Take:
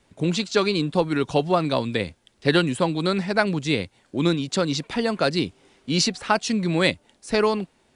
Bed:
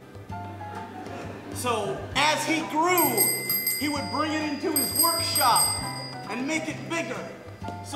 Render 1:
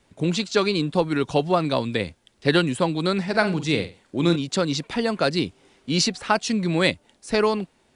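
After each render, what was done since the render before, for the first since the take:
0:03.23–0:04.36: flutter between parallel walls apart 8 metres, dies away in 0.28 s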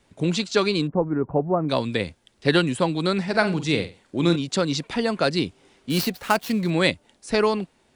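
0:00.87–0:01.69: Gaussian smoothing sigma 7.1 samples
0:05.90–0:06.70: gap after every zero crossing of 0.067 ms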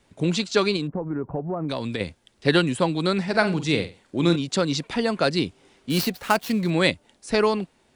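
0:00.76–0:02.01: downward compressor, threshold −23 dBFS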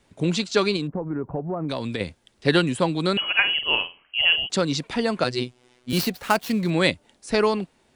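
0:03.17–0:04.50: voice inversion scrambler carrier 3,100 Hz
0:05.24–0:05.93: phases set to zero 124 Hz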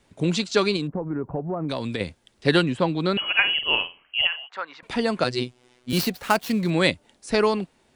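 0:02.63–0:03.26: high-frequency loss of the air 120 metres
0:04.27–0:04.83: flat-topped band-pass 1,300 Hz, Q 1.1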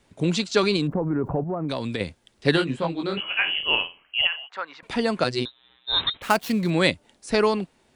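0:00.63–0:01.44: envelope flattener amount 50%
0:02.55–0:03.62: micro pitch shift up and down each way 36 cents → 53 cents
0:05.45–0:06.22: voice inversion scrambler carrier 3,900 Hz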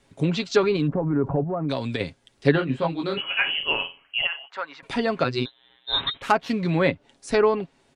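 treble cut that deepens with the level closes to 1,900 Hz, closed at −16.5 dBFS
comb filter 7.3 ms, depth 42%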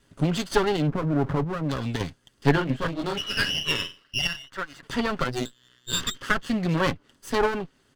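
lower of the sound and its delayed copy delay 0.64 ms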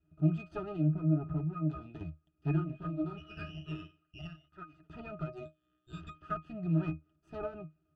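resonances in every octave D#, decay 0.17 s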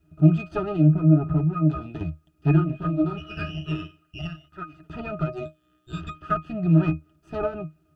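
level +12 dB

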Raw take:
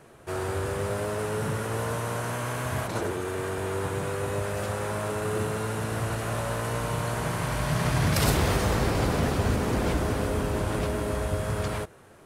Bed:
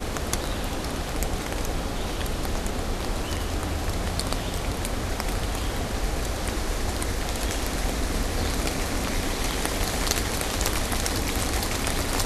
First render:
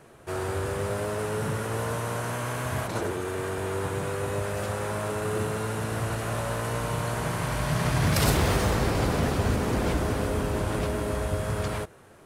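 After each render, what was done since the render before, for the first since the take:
0:08.03–0:08.70: mu-law and A-law mismatch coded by mu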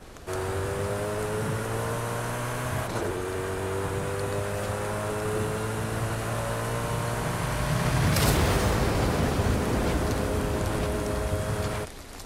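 mix in bed −16.5 dB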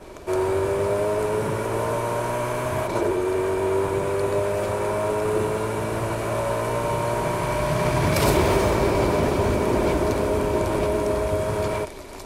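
hollow resonant body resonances 380/600/940/2,300 Hz, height 11 dB, ringing for 30 ms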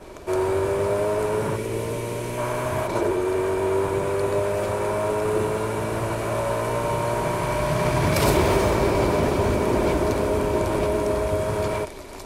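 0:01.56–0:02.38: flat-topped bell 1,000 Hz −9.5 dB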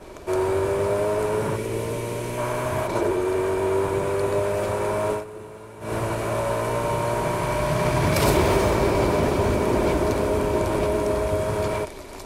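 0:05.12–0:05.93: duck −15.5 dB, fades 0.13 s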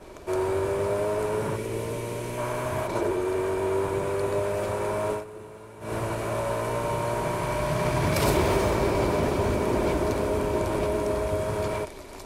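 level −3.5 dB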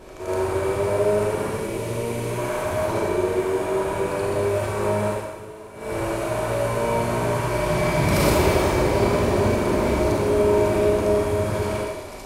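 backwards echo 77 ms −5 dB
four-comb reverb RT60 1.1 s, combs from 30 ms, DRR −0.5 dB

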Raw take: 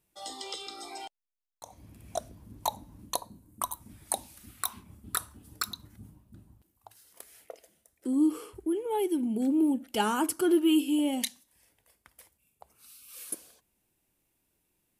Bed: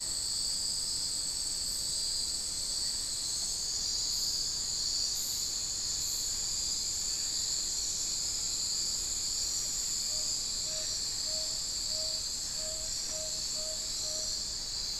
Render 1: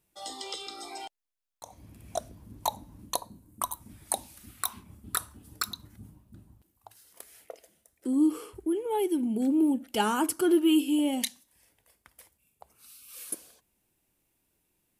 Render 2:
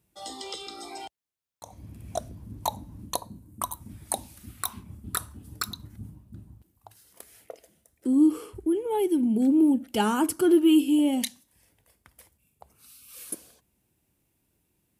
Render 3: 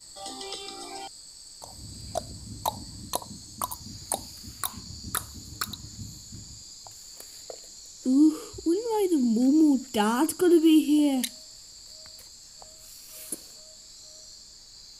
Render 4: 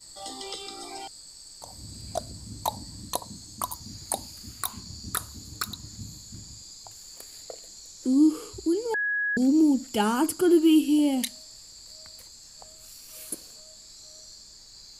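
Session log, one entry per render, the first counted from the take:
level +1 dB
high-pass filter 57 Hz; low-shelf EQ 250 Hz +10 dB
mix in bed −12.5 dB
0:08.94–0:09.37: beep over 1,670 Hz −24 dBFS

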